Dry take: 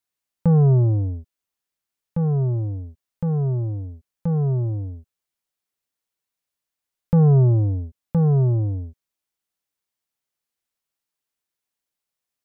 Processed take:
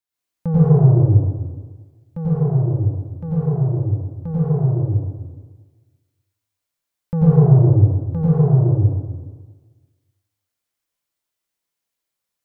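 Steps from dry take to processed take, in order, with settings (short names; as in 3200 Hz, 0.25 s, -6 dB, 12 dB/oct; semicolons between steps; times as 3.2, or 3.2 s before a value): plate-style reverb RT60 1.4 s, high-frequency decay 0.95×, pre-delay 80 ms, DRR -8.5 dB; gain -5.5 dB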